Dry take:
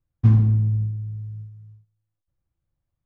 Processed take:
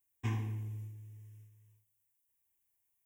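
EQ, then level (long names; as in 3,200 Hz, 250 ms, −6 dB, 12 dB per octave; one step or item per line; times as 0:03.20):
first difference
low-shelf EQ 360 Hz +7.5 dB
phaser with its sweep stopped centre 890 Hz, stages 8
+14.0 dB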